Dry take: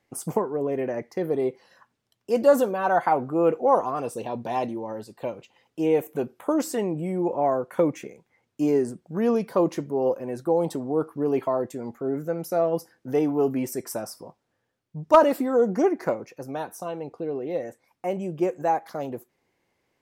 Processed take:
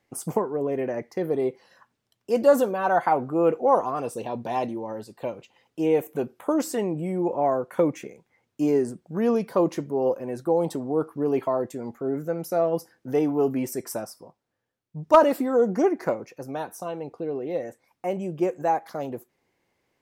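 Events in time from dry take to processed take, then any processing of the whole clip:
14–14.99 upward expander, over -43 dBFS

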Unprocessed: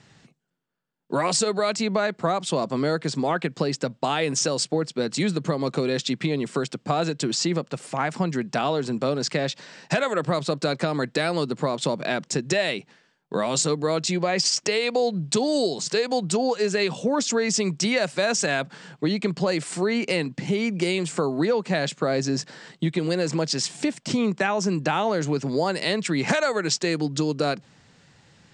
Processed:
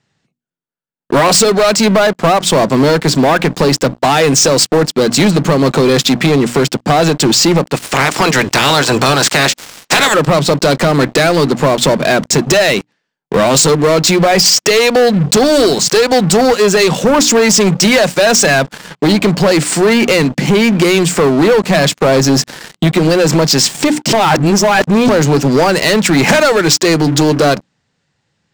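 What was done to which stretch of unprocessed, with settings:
7.74–10.13 spectral limiter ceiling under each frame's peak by 22 dB
24.13–25.09 reverse
whole clip: notches 60/120/180/240/300 Hz; sample leveller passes 5

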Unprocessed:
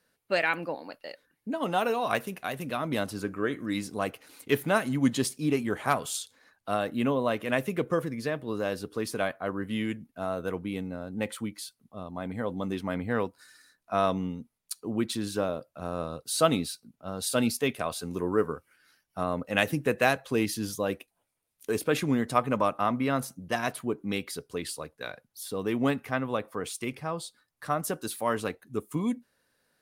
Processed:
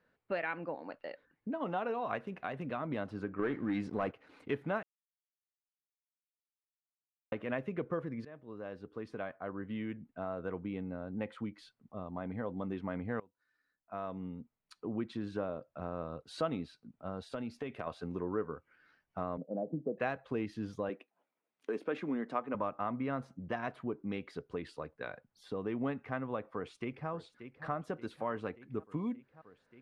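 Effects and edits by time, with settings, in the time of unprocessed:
3.39–4.12 sample leveller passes 2
4.83–7.32 mute
8.25–10.66 fade in, from -21 dB
13.2–14.86 fade in quadratic, from -22.5 dB
17.23–17.87 compressor, threshold -31 dBFS
19.37–19.98 elliptic band-pass 160–670 Hz, stop band 50 dB
20.89–22.55 HPF 200 Hz 24 dB/oct
26.41–27.09 echo throw 0.58 s, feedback 75%, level -15.5 dB
whole clip: LPF 2000 Hz 12 dB/oct; compressor 2:1, threshold -39 dBFS

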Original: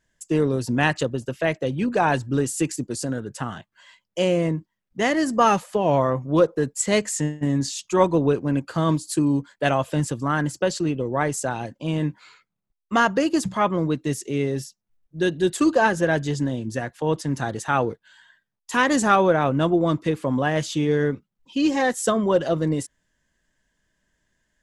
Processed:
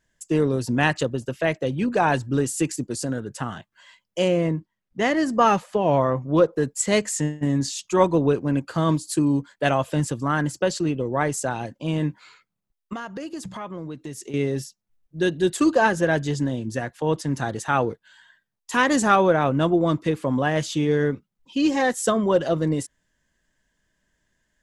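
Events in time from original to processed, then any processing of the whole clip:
4.28–6.53 high shelf 7900 Hz -11 dB
12.93–14.34 compressor 4:1, threshold -32 dBFS

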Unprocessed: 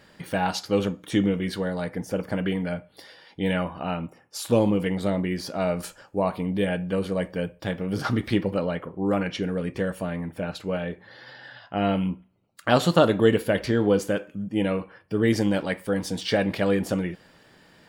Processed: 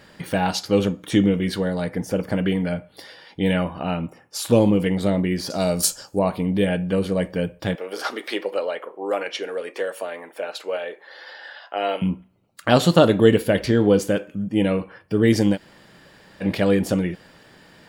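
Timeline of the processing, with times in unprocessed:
5.5–6.19 resonant high shelf 3500 Hz +13 dB, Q 1.5
7.75–12.02 HPF 420 Hz 24 dB/oct
15.55–16.43 room tone, crossfade 0.06 s
whole clip: dynamic EQ 1200 Hz, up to -4 dB, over -37 dBFS, Q 0.84; gain +5 dB

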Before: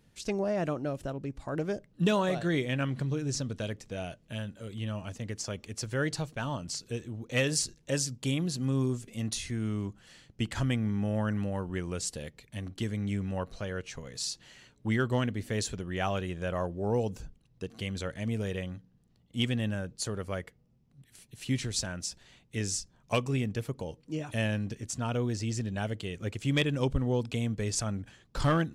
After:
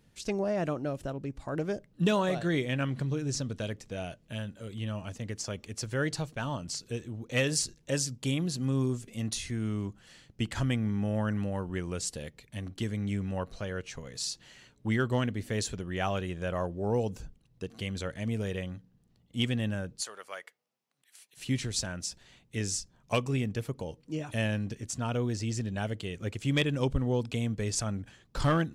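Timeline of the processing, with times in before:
20.02–21.37 HPF 860 Hz

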